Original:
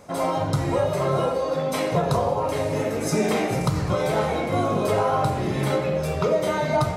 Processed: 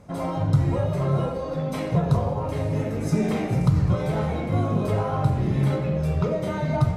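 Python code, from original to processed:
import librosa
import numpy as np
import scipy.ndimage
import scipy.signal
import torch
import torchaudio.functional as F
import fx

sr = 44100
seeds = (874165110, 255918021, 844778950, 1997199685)

y = fx.cheby_harmonics(x, sr, harmonics=(6,), levels_db=(-34,), full_scale_db=-10.5)
y = fx.bass_treble(y, sr, bass_db=13, treble_db=-4)
y = y * 10.0 ** (-6.5 / 20.0)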